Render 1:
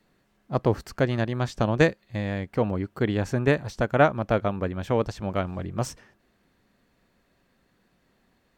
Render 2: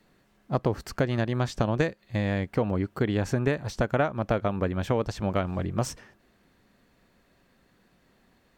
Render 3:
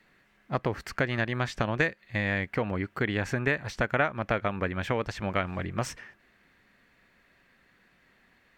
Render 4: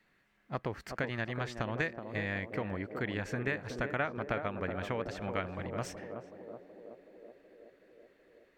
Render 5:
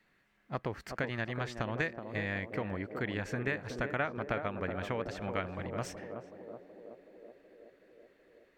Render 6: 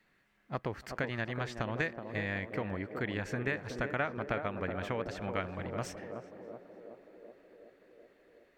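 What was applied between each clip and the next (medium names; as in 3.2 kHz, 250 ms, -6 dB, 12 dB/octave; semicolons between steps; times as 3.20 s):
compression 6:1, threshold -24 dBFS, peak gain reduction 11 dB; trim +3 dB
peaking EQ 2 kHz +12.5 dB 1.4 oct; trim -4.5 dB
band-passed feedback delay 374 ms, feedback 75%, band-pass 420 Hz, level -5 dB; trim -7.5 dB
no audible change
tape echo 290 ms, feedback 81%, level -24 dB, low-pass 4 kHz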